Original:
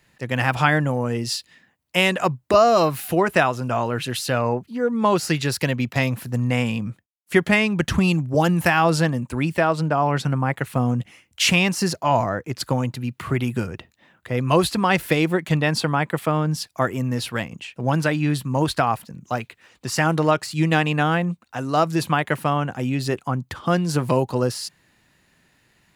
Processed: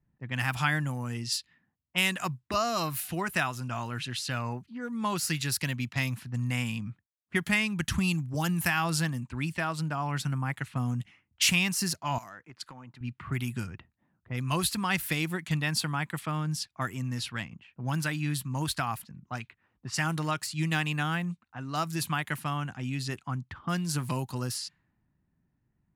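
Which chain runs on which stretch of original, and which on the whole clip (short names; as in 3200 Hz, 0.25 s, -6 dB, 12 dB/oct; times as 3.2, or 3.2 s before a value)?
12.18–13.01 HPF 560 Hz 6 dB/oct + compressor 5:1, threshold -30 dBFS + high shelf 4900 Hz +8.5 dB
whole clip: high shelf 8500 Hz +11.5 dB; low-pass opened by the level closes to 530 Hz, open at -18 dBFS; bell 500 Hz -14 dB 1.3 oct; gain -6.5 dB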